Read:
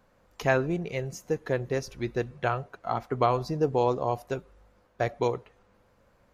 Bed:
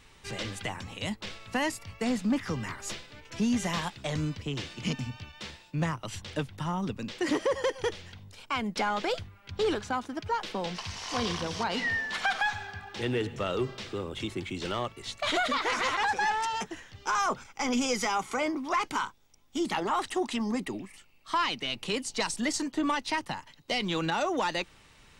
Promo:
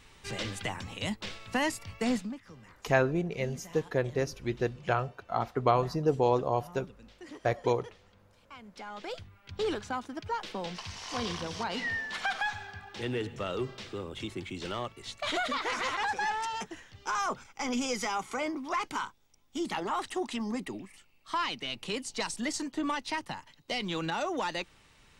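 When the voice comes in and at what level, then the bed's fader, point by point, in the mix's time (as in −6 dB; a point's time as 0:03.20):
2.45 s, −1.0 dB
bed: 0:02.16 0 dB
0:02.39 −18.5 dB
0:08.68 −18.5 dB
0:09.34 −3.5 dB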